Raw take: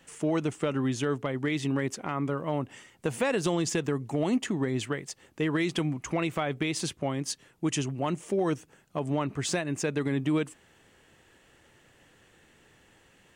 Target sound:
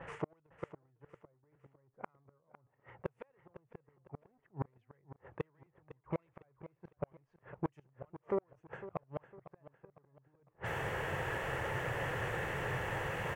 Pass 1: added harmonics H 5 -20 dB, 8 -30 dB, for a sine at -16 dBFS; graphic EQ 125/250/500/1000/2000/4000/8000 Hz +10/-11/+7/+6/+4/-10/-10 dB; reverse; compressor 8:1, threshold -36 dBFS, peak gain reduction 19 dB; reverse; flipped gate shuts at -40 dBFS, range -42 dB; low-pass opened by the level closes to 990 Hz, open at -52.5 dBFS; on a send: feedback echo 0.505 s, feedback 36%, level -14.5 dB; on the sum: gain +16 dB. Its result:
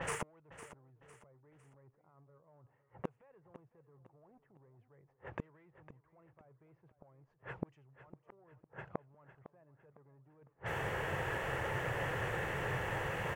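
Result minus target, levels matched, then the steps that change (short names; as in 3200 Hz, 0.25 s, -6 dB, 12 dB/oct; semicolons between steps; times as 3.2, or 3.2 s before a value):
compressor: peak gain reduction -8.5 dB
change: compressor 8:1, threshold -45.5 dBFS, peak gain reduction 27.5 dB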